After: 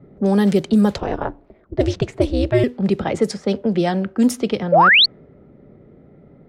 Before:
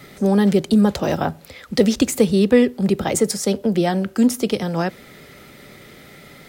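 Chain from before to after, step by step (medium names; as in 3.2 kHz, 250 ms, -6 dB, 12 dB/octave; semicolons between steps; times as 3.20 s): 0.98–2.64 s: ring modulator 130 Hz; level-controlled noise filter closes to 440 Hz, open at -11 dBFS; 4.72–5.06 s: painted sound rise 510–4700 Hz -11 dBFS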